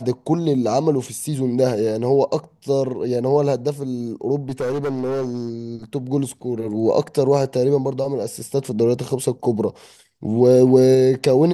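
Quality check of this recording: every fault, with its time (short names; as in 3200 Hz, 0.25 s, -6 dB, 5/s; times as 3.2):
4.49–5.49 clipped -19.5 dBFS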